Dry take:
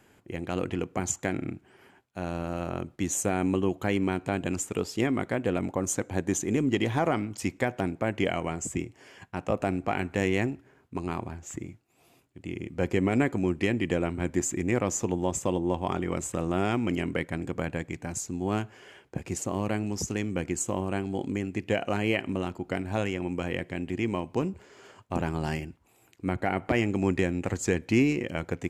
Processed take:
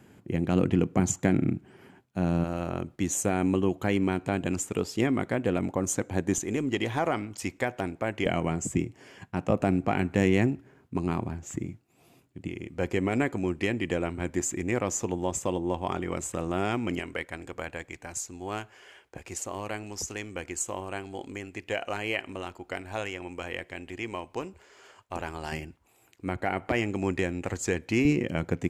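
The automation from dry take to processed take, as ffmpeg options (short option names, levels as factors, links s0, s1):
-af "asetnsamples=n=441:p=0,asendcmd='2.44 equalizer g 1.5;6.38 equalizer g -5;8.26 equalizer g 6;12.48 equalizer g -3.5;16.99 equalizer g -14;25.52 equalizer g -4.5;28.05 equalizer g 5',equalizer=f=170:t=o:w=2.1:g=10.5"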